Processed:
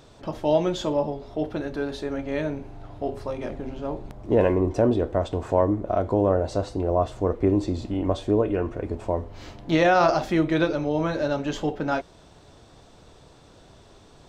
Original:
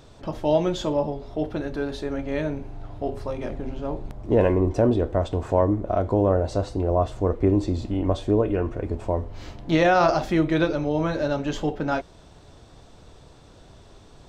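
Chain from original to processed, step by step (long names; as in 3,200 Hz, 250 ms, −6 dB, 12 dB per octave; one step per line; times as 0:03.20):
low-shelf EQ 100 Hz −6.5 dB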